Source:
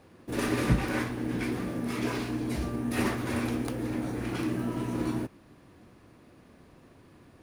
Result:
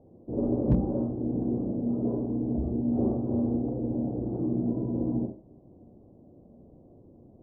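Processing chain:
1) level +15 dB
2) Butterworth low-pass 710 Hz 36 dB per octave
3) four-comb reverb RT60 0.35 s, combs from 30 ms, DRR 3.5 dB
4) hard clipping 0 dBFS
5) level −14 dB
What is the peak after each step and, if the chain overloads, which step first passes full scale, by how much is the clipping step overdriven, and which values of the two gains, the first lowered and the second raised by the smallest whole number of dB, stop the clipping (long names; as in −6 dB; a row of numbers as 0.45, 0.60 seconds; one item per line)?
+4.0, +3.5, +3.5, 0.0, −14.0 dBFS
step 1, 3.5 dB
step 1 +11 dB, step 5 −10 dB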